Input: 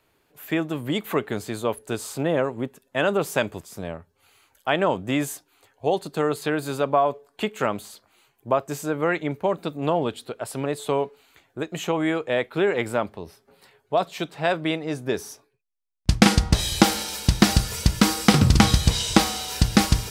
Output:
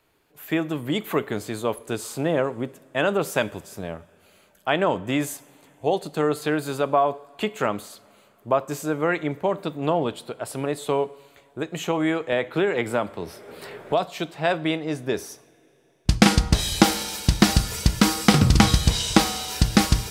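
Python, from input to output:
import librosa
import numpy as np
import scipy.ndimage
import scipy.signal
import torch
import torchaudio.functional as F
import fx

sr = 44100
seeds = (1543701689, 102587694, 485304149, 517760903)

y = fx.rev_double_slope(x, sr, seeds[0], early_s=0.57, late_s=4.1, knee_db=-18, drr_db=16.0)
y = fx.band_squash(y, sr, depth_pct=70, at=(12.32, 14.07))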